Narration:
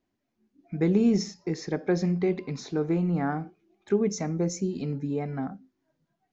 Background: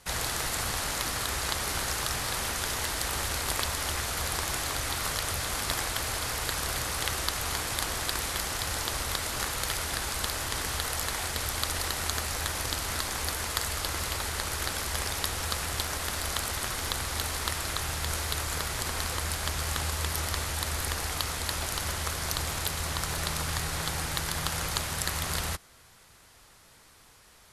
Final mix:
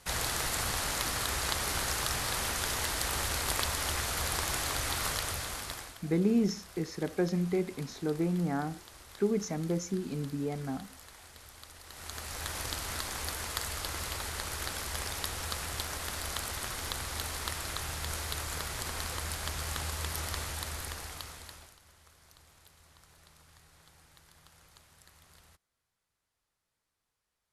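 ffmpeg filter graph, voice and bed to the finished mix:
-filter_complex "[0:a]adelay=5300,volume=-4.5dB[a];[1:a]volume=14dB,afade=t=out:st=5.06:d=0.93:silence=0.112202,afade=t=in:st=11.85:d=0.72:silence=0.16788,afade=t=out:st=20.42:d=1.35:silence=0.0668344[b];[a][b]amix=inputs=2:normalize=0"

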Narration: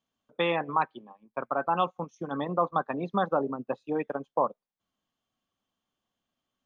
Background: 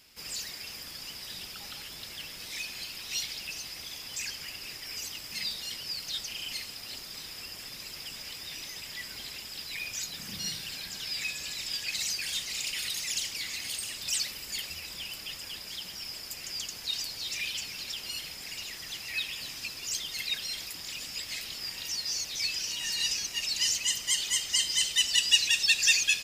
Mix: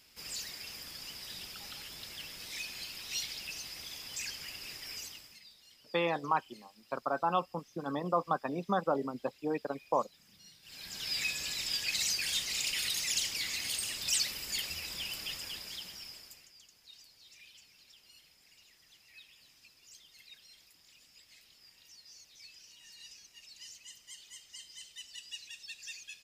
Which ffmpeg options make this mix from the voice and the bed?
-filter_complex "[0:a]adelay=5550,volume=-4dB[a];[1:a]volume=19dB,afade=t=out:st=4.89:d=0.51:silence=0.112202,afade=t=in:st=10.62:d=0.52:silence=0.0749894,afade=t=out:st=15.28:d=1.23:silence=0.0749894[b];[a][b]amix=inputs=2:normalize=0"

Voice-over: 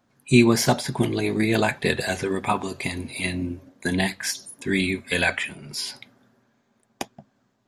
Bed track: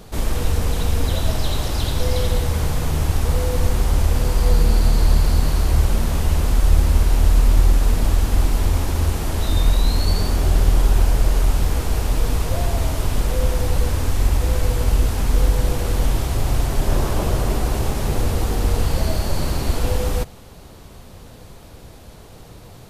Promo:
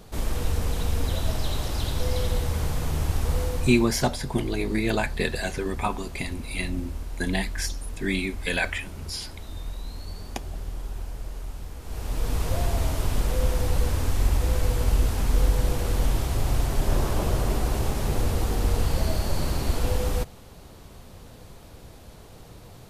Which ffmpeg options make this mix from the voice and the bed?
-filter_complex "[0:a]adelay=3350,volume=-4dB[a];[1:a]volume=8dB,afade=t=out:st=3.41:d=0.52:silence=0.237137,afade=t=in:st=11.81:d=0.67:silence=0.199526[b];[a][b]amix=inputs=2:normalize=0"

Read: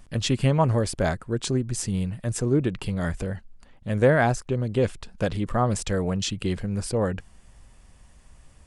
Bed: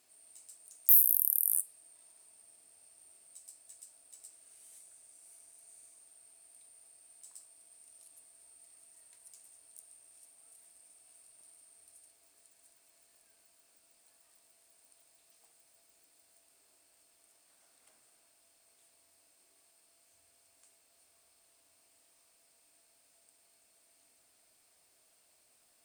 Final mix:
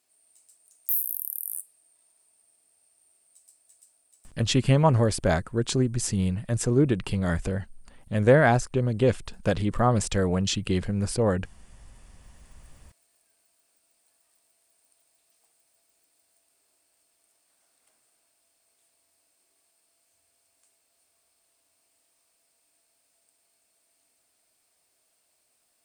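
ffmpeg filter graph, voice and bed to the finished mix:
-filter_complex "[0:a]adelay=4250,volume=1dB[a];[1:a]volume=6dB,afade=t=out:st=3.89:d=0.75:silence=0.398107,afade=t=in:st=11.92:d=0.78:silence=0.298538[b];[a][b]amix=inputs=2:normalize=0"

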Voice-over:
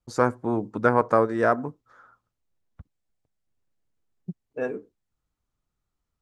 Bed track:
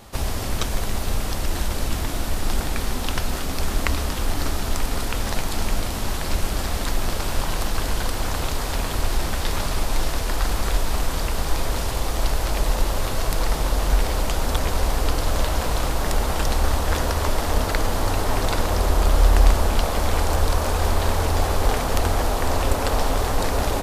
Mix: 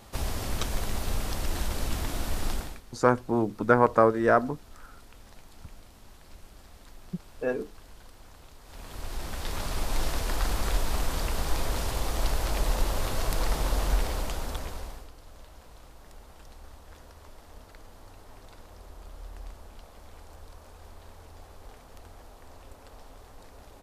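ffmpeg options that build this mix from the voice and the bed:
-filter_complex "[0:a]adelay=2850,volume=0dB[a];[1:a]volume=15dB,afade=t=out:st=2.45:d=0.36:silence=0.0944061,afade=t=in:st=8.63:d=1.43:silence=0.0891251,afade=t=out:st=13.79:d=1.3:silence=0.0749894[b];[a][b]amix=inputs=2:normalize=0"

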